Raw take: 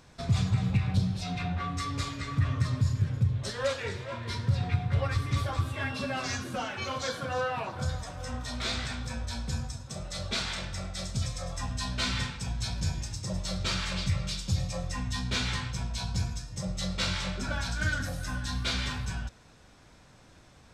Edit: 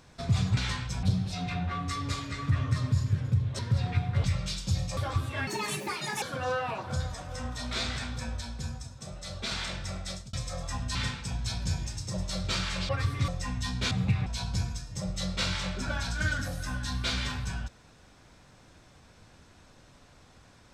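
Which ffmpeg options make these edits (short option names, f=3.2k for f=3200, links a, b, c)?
-filter_complex "[0:a]asplit=16[a][b][c][d][e][f][g][h][i][j][k][l][m][n][o][p];[a]atrim=end=0.572[q];[b]atrim=start=15.408:end=15.872[r];[c]atrim=start=0.918:end=3.482[s];[d]atrim=start=4.358:end=5.012[t];[e]atrim=start=14.048:end=14.782[u];[f]atrim=start=5.398:end=5.904[v];[g]atrim=start=5.9:end=7.11,asetpts=PTS-STARTPTS,asetrate=71001,aresample=44100,atrim=end_sample=33143,asetpts=PTS-STARTPTS[w];[h]atrim=start=7.106:end=9.302[x];[i]atrim=start=9.298:end=10.402,asetpts=PTS-STARTPTS,volume=-3.5dB[y];[j]atrim=start=10.398:end=11.22,asetpts=PTS-STARTPTS,afade=t=out:st=0.572:d=0.25[z];[k]atrim=start=11.22:end=11.842,asetpts=PTS-STARTPTS,afade=t=in:d=0.004:c=hsin[aa];[l]atrim=start=12.108:end=14.052[ab];[m]atrim=start=5.008:end=5.402[ac];[n]atrim=start=14.778:end=15.412[ad];[o]atrim=start=0.568:end=0.922[ae];[p]atrim=start=15.868[af];[q][r]acrossfade=d=0.004:c1=hsin:c2=hsin[ag];[ag][s]acrossfade=d=0.004:c1=hsin:c2=hsin[ah];[ah][t]acrossfade=d=0.004:c1=hsin:c2=hsin[ai];[ai][u]acrossfade=d=0.004:c1=hsin:c2=hsin[aj];[aj][v]acrossfade=d=0.004:c1=hsin:c2=hsin[ak];[ak][w]acrossfade=d=0.004:c1=hsin:c2=hsin[al];[al][x]acrossfade=d=0.004:c1=hsin:c2=hsin[am];[am][y]acrossfade=d=0.004:c1=hsin:c2=hsin[an];[z][aa]concat=n=2:v=0:a=1[ao];[an][ao]acrossfade=d=0.004:c1=hsin:c2=hsin[ap];[ap][ab]acrossfade=d=0.004:c1=hsin:c2=hsin[aq];[aq][ac]acrossfade=d=0.004:c1=hsin:c2=hsin[ar];[ar][ad]acrossfade=d=0.004:c1=hsin:c2=hsin[as];[as][ae]acrossfade=d=0.004:c1=hsin:c2=hsin[at];[at][af]acrossfade=d=0.004:c1=hsin:c2=hsin"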